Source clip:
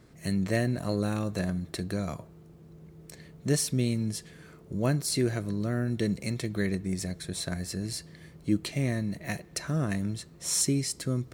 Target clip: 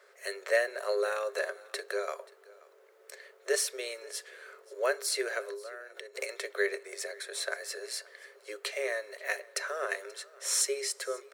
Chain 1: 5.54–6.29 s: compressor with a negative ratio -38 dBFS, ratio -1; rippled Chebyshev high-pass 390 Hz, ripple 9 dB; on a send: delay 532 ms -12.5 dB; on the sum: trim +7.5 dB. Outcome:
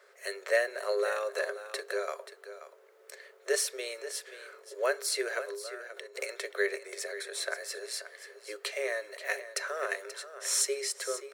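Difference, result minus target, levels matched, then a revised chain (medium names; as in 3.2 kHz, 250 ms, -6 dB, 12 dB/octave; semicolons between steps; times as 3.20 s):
echo-to-direct +10 dB
5.54–6.29 s: compressor with a negative ratio -38 dBFS, ratio -1; rippled Chebyshev high-pass 390 Hz, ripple 9 dB; on a send: delay 532 ms -22.5 dB; on the sum: trim +7.5 dB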